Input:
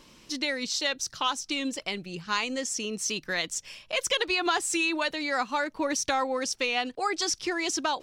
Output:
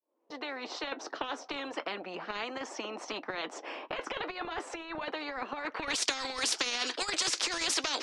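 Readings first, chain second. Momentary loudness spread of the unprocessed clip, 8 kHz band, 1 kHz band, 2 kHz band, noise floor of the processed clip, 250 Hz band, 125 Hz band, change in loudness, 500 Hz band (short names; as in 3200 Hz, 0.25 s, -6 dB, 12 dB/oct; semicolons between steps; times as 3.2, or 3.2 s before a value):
6 LU, -5.0 dB, -7.0 dB, -6.5 dB, -56 dBFS, -9.5 dB, -9.0 dB, -5.5 dB, -7.0 dB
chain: opening faded in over 1.00 s; steep high-pass 290 Hz 48 dB/oct; gate -54 dBFS, range -28 dB; flange 0.36 Hz, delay 3.3 ms, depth 4.2 ms, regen -61%; limiter -23 dBFS, peak gain reduction 6 dB; negative-ratio compressor -35 dBFS, ratio -0.5; low-pass sweep 710 Hz -> 4600 Hz, 5.55–6.05; spectral compressor 4:1; gain +6.5 dB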